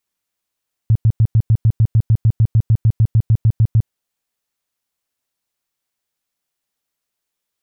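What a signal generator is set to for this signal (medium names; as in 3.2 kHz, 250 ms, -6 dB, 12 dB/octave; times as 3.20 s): tone bursts 111 Hz, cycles 6, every 0.15 s, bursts 20, -8 dBFS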